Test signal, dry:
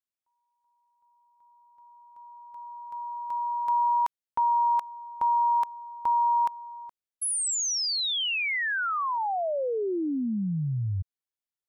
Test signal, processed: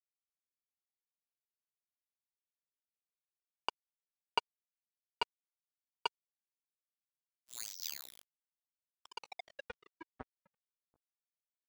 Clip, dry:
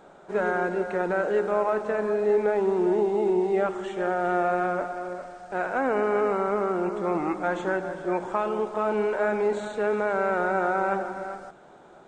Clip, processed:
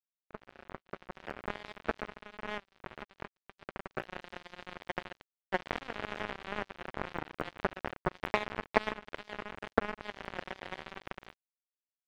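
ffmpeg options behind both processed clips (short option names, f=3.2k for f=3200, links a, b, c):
-filter_complex "[0:a]equalizer=f=110:t=o:w=0.87:g=3.5,afwtdn=0.0224,lowpass=5.5k,asplit=2[a][b];[b]aecho=0:1:13|43:0.668|0.224[c];[a][c]amix=inputs=2:normalize=0,alimiter=limit=-20.5dB:level=0:latency=1:release=25,asuperstop=centerf=1800:order=4:qfactor=0.57,adynamicequalizer=threshold=0.00631:dfrequency=1100:dqfactor=1.8:tfrequency=1100:tqfactor=1.8:attack=5:release=100:ratio=0.375:range=2:mode=boostabove:tftype=bell,acompressor=threshold=-33dB:ratio=12:attack=34:release=119:knee=1:detection=peak,acrusher=bits=3:mix=0:aa=0.5,dynaudnorm=f=280:g=9:m=14.5dB"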